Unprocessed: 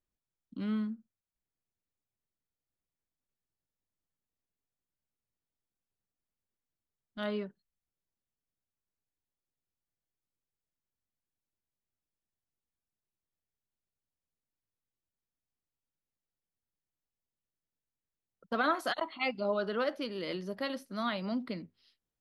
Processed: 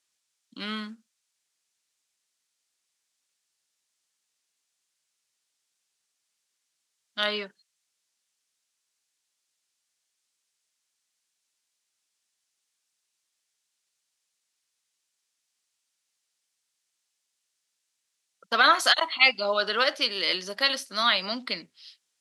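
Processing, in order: frequency weighting ITU-R 468; trim +9 dB

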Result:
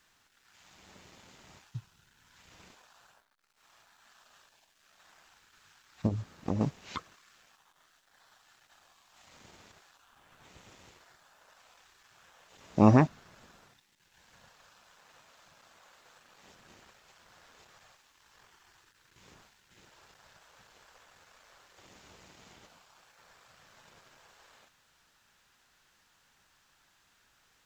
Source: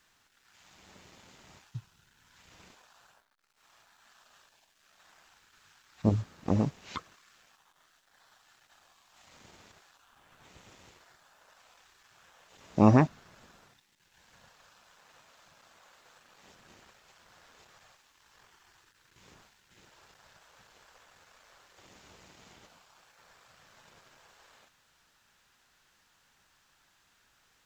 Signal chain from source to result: 6.06–6.61 s: compression 6:1, threshold -27 dBFS, peak gain reduction 8.5 dB

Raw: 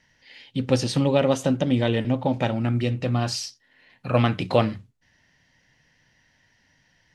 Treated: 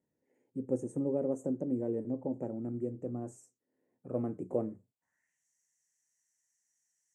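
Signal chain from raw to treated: FFT filter 210 Hz 0 dB, 2.3 kHz -12 dB, 4.9 kHz -30 dB, 7.7 kHz +6 dB; band-pass sweep 390 Hz -> 4.4 kHz, 4.75–5.47 s; resonant high shelf 4.8 kHz +11.5 dB, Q 3; trim -2.5 dB

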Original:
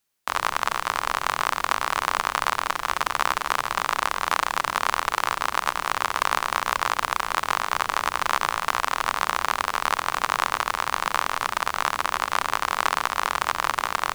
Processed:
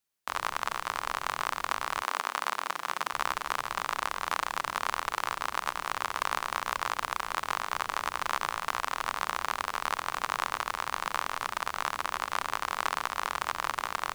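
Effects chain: 2.01–3.12 s: high-pass 260 Hz -> 130 Hz 24 dB/octave; trim -7.5 dB

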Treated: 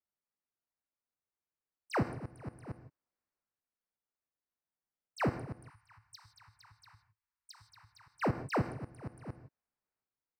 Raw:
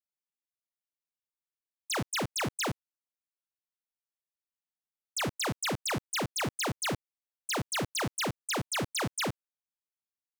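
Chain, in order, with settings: 5.67–8.08 s: Chebyshev band-stop 110–920 Hz, order 4; transient shaper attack -5 dB, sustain +6 dB; inverted gate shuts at -30 dBFS, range -26 dB; boxcar filter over 13 samples; gated-style reverb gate 190 ms flat, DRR 10 dB; trim +3.5 dB

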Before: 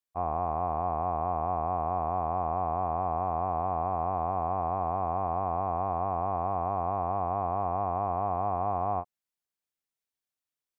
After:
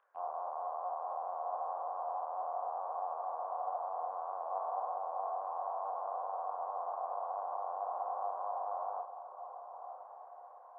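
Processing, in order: elliptic band-pass 520–1500 Hz, stop band 80 dB; upward compressor, threshold -40 dBFS; chorus voices 4, 0.78 Hz, delay 29 ms, depth 2.3 ms; echo that smears into a reverb 1093 ms, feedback 47%, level -10 dB; on a send at -16 dB: reverberation RT60 0.50 s, pre-delay 10 ms; on the sum: trim -5 dB

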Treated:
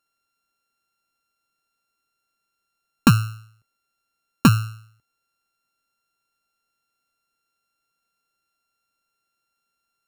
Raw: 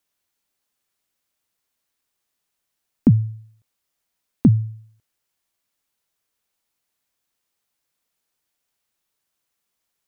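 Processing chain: sorted samples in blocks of 32 samples; peaking EQ 91 Hz -4.5 dB 0.52 oct

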